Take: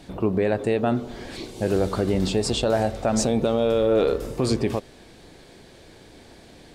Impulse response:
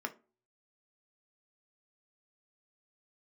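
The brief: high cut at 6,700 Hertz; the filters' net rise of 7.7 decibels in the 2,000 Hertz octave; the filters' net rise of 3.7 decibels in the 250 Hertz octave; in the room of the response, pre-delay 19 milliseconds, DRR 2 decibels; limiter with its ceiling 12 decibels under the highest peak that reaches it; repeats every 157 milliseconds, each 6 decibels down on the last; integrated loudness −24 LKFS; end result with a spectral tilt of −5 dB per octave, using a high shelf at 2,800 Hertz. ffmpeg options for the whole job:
-filter_complex "[0:a]lowpass=6700,equalizer=frequency=250:width_type=o:gain=4.5,equalizer=frequency=2000:width_type=o:gain=7,highshelf=frequency=2800:gain=7.5,alimiter=limit=-18.5dB:level=0:latency=1,aecho=1:1:157|314|471|628|785|942:0.501|0.251|0.125|0.0626|0.0313|0.0157,asplit=2[link_01][link_02];[1:a]atrim=start_sample=2205,adelay=19[link_03];[link_02][link_03]afir=irnorm=-1:irlink=0,volume=-4dB[link_04];[link_01][link_04]amix=inputs=2:normalize=0,volume=1.5dB"

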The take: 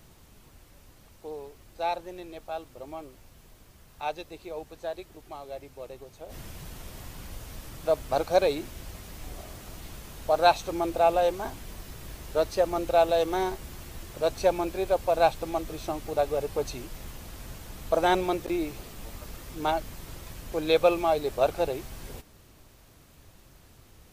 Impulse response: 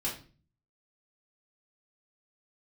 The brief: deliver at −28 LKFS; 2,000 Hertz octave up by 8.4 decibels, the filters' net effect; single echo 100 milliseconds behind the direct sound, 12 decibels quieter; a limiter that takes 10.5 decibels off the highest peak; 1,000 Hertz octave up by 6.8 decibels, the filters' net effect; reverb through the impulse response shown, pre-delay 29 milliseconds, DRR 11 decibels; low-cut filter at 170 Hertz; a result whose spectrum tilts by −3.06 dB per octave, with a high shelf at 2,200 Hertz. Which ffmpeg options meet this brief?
-filter_complex "[0:a]highpass=170,equalizer=frequency=1000:width_type=o:gain=8,equalizer=frequency=2000:width_type=o:gain=5.5,highshelf=frequency=2200:gain=5.5,alimiter=limit=-11.5dB:level=0:latency=1,aecho=1:1:100:0.251,asplit=2[link_01][link_02];[1:a]atrim=start_sample=2205,adelay=29[link_03];[link_02][link_03]afir=irnorm=-1:irlink=0,volume=-15dB[link_04];[link_01][link_04]amix=inputs=2:normalize=0,volume=-2.5dB"

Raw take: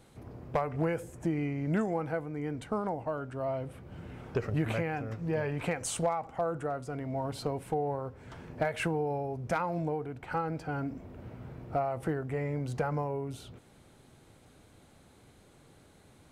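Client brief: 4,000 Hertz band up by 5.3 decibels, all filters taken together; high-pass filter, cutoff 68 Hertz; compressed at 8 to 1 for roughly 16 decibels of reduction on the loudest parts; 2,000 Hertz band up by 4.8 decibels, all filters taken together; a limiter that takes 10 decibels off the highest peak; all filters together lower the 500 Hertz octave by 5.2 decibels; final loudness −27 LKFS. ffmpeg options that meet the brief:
ffmpeg -i in.wav -af "highpass=68,equalizer=frequency=500:width_type=o:gain=-7,equalizer=frequency=2000:width_type=o:gain=5.5,equalizer=frequency=4000:width_type=o:gain=5,acompressor=threshold=-44dB:ratio=8,volume=23dB,alimiter=limit=-16dB:level=0:latency=1" out.wav

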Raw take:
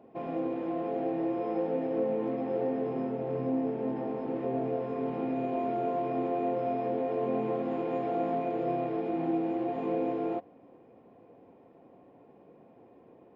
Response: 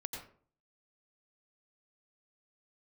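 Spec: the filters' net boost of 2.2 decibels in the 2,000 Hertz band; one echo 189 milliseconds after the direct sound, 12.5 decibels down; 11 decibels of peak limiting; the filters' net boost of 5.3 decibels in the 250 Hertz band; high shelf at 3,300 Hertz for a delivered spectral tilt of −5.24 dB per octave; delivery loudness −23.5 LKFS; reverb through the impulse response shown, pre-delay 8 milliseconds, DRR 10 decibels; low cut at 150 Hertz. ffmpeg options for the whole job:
-filter_complex "[0:a]highpass=150,equalizer=frequency=250:width_type=o:gain=7,equalizer=frequency=2000:width_type=o:gain=5,highshelf=frequency=3300:gain=-7,alimiter=level_in=2.5dB:limit=-24dB:level=0:latency=1,volume=-2.5dB,aecho=1:1:189:0.237,asplit=2[link_01][link_02];[1:a]atrim=start_sample=2205,adelay=8[link_03];[link_02][link_03]afir=irnorm=-1:irlink=0,volume=-9dB[link_04];[link_01][link_04]amix=inputs=2:normalize=0,volume=9.5dB"

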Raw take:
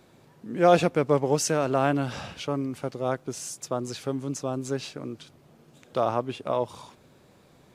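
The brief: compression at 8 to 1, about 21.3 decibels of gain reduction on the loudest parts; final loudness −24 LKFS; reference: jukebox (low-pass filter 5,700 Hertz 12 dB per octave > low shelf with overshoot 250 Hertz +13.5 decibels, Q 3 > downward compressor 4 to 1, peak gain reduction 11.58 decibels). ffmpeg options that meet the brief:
ffmpeg -i in.wav -af "acompressor=threshold=-36dB:ratio=8,lowpass=5700,lowshelf=frequency=250:width_type=q:width=3:gain=13.5,acompressor=threshold=-34dB:ratio=4,volume=14.5dB" out.wav

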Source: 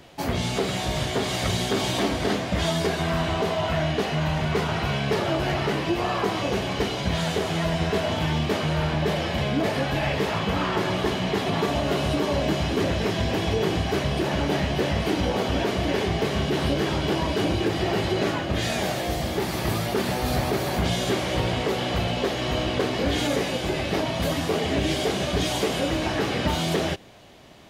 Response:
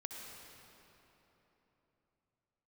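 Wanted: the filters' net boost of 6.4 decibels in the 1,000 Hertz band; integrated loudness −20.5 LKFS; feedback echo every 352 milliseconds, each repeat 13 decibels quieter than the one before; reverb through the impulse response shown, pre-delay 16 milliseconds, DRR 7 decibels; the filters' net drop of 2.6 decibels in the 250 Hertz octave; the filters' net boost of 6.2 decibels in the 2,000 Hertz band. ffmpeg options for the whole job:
-filter_complex "[0:a]equalizer=frequency=250:width_type=o:gain=-4.5,equalizer=frequency=1000:width_type=o:gain=7.5,equalizer=frequency=2000:width_type=o:gain=5.5,aecho=1:1:352|704|1056:0.224|0.0493|0.0108,asplit=2[link_01][link_02];[1:a]atrim=start_sample=2205,adelay=16[link_03];[link_02][link_03]afir=irnorm=-1:irlink=0,volume=-5.5dB[link_04];[link_01][link_04]amix=inputs=2:normalize=0,volume=1dB"

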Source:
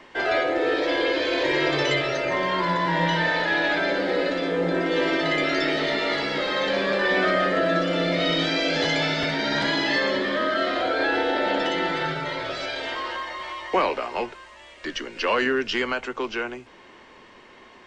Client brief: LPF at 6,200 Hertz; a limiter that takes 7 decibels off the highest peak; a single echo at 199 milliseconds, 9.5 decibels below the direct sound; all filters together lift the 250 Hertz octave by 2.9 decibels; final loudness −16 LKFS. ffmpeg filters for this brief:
ffmpeg -i in.wav -af "lowpass=6200,equalizer=frequency=250:width_type=o:gain=4,alimiter=limit=-17dB:level=0:latency=1,aecho=1:1:199:0.335,volume=9.5dB" out.wav

